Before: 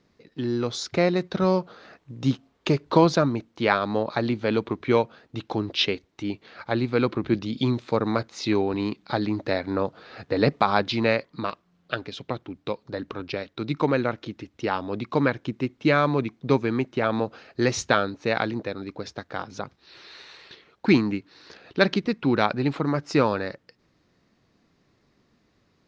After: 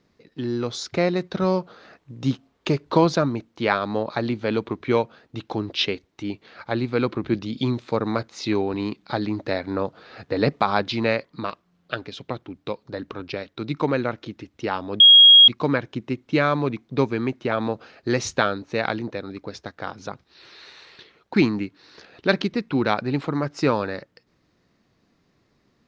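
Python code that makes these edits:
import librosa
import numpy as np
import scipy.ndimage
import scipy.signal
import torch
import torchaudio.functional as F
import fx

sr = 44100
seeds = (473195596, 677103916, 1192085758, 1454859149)

y = fx.edit(x, sr, fx.insert_tone(at_s=15.0, length_s=0.48, hz=3280.0, db=-6.5), tone=tone)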